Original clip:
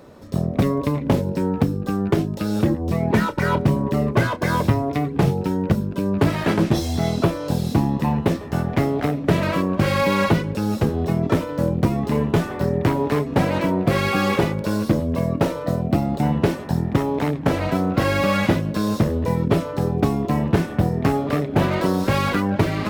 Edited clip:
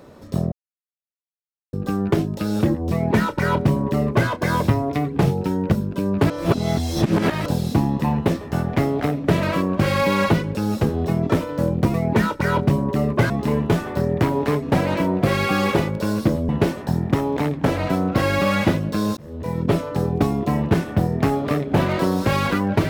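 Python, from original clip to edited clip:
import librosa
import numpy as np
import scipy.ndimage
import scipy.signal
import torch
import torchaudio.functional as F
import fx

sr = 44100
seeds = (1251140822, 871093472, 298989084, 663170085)

y = fx.edit(x, sr, fx.silence(start_s=0.52, length_s=1.21),
    fx.duplicate(start_s=2.92, length_s=1.36, to_s=11.94),
    fx.reverse_span(start_s=6.3, length_s=1.16),
    fx.cut(start_s=15.13, length_s=1.18),
    fx.fade_in_span(start_s=18.99, length_s=0.57), tone=tone)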